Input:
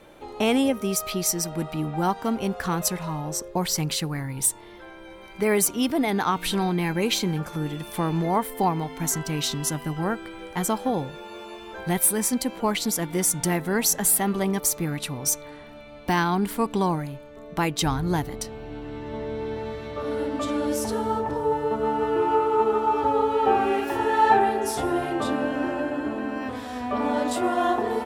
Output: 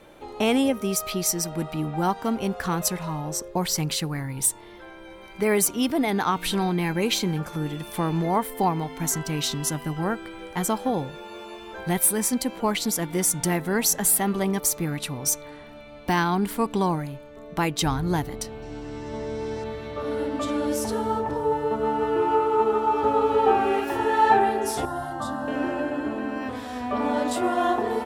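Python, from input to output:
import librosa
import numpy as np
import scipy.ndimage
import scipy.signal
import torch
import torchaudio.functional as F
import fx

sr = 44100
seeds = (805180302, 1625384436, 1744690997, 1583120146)

y = fx.band_shelf(x, sr, hz=6500.0, db=12.5, octaves=1.1, at=(18.62, 19.64))
y = fx.echo_throw(y, sr, start_s=22.73, length_s=0.49, ms=300, feedback_pct=40, wet_db=-5.0)
y = fx.fixed_phaser(y, sr, hz=1000.0, stages=4, at=(24.85, 25.48))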